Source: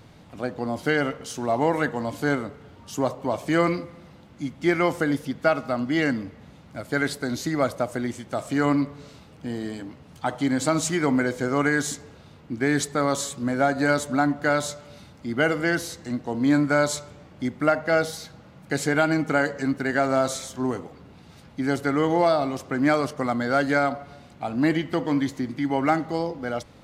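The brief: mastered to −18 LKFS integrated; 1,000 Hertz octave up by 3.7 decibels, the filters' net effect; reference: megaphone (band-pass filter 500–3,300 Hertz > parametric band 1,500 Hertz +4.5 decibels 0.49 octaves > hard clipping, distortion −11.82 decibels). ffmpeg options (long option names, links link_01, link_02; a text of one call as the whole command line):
ffmpeg -i in.wav -af "highpass=500,lowpass=3300,equalizer=frequency=1000:width_type=o:gain=4,equalizer=frequency=1500:width_type=o:width=0.49:gain=4.5,asoftclip=type=hard:threshold=-16.5dB,volume=8dB" out.wav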